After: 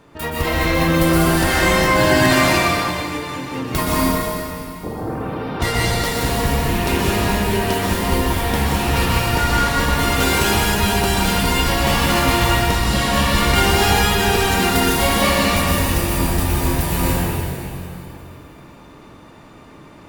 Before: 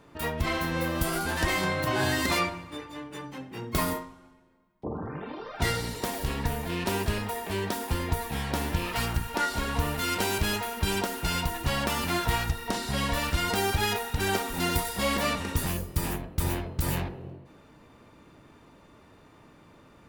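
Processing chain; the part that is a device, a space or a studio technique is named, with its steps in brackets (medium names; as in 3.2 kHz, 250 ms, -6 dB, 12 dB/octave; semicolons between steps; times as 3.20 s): stairwell (reverberation RT60 2.7 s, pre-delay 116 ms, DRR -5.5 dB); trim +5.5 dB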